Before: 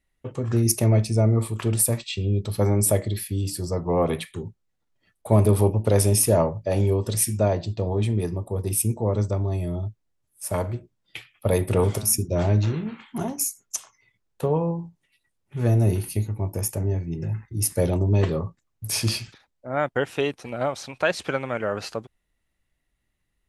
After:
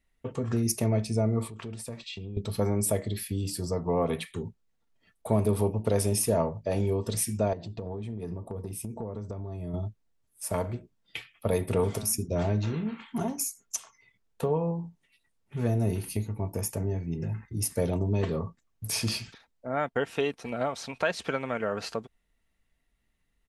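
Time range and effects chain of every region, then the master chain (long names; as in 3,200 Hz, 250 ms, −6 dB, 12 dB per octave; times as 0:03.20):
0:01.48–0:02.37: low-pass filter 6,200 Hz + downward compressor 3 to 1, threshold −38 dBFS
0:07.53–0:09.74: high-shelf EQ 2,200 Hz −8.5 dB + downward compressor 12 to 1, threshold −30 dBFS
whole clip: comb filter 4.4 ms, depth 31%; downward compressor 1.5 to 1, threshold −32 dBFS; high-shelf EQ 9,700 Hz −4.5 dB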